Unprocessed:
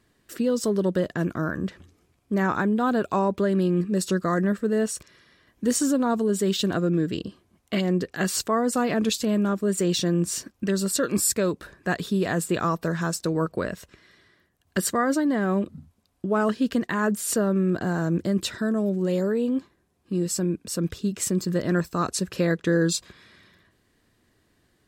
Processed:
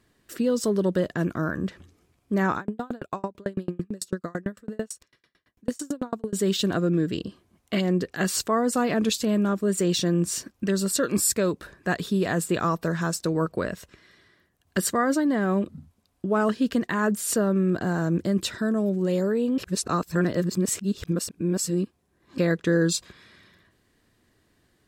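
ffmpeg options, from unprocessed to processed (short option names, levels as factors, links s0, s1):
-filter_complex "[0:a]asettb=1/sr,asplit=3[s0][s1][s2];[s0]atrim=end=2.574[s3];[s1]atrim=start=2.57:end=6.33,asetpts=PTS-STARTPTS,afade=t=in:d=0.004:c=qsin,afade=t=out:st=3.756:d=0.004:c=qsin,aeval=exprs='val(0)*pow(10,-37*if(lt(mod(9*n/s,1),2*abs(9)/1000),1-mod(9*n/s,1)/(2*abs(9)/1000),(mod(9*n/s,1)-2*abs(9)/1000)/(1-2*abs(9)/1000))/20)':c=same[s4];[s2]atrim=start=6.326[s5];[s3][s4]acrossfade=d=0.004:c1=hsin:c2=qsin[s6];[s6][s5]acrossfade=d=0.004:c1=qsin:c2=hsin,asplit=3[s7][s8][s9];[s7]atrim=end=19.582[s10];[s8]atrim=start=19.578:end=22.382,asetpts=PTS-STARTPTS,areverse[s11];[s9]atrim=start=22.378[s12];[s10][s11]acrossfade=d=0.004:c1=hsin:c2=hsin[s13];[s13][s12]acrossfade=d=0.004:c1=hsin:c2=hsin"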